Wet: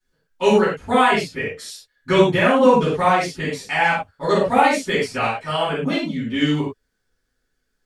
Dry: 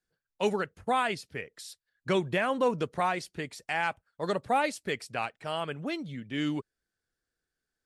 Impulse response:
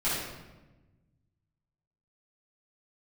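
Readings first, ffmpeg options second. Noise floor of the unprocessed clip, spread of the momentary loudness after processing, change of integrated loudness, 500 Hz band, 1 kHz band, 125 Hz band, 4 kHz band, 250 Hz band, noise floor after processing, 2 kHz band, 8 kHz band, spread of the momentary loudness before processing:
below −85 dBFS, 12 LU, +12.5 dB, +13.0 dB, +12.0 dB, +13.0 dB, +12.0 dB, +13.0 dB, −73 dBFS, +12.0 dB, +10.0 dB, 11 LU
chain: -filter_complex "[1:a]atrim=start_sample=2205,afade=type=out:start_time=0.22:duration=0.01,atrim=end_sample=10143,asetrate=61740,aresample=44100[link_01];[0:a][link_01]afir=irnorm=-1:irlink=0,volume=5dB"

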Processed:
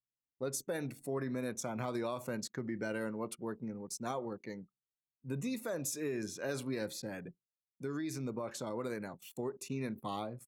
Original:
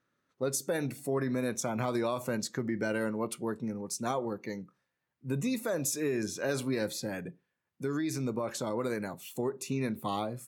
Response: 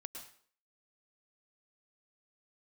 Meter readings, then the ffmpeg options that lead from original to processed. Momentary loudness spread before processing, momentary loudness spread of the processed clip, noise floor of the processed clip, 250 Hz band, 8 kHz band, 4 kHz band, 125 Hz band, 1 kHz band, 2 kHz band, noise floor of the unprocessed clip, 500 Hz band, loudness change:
7 LU, 7 LU, below −85 dBFS, −6.0 dB, −6.0 dB, −6.0 dB, −6.0 dB, −6.0 dB, −6.0 dB, −84 dBFS, −6.0 dB, −6.0 dB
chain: -af "anlmdn=0.0158,volume=-6dB"

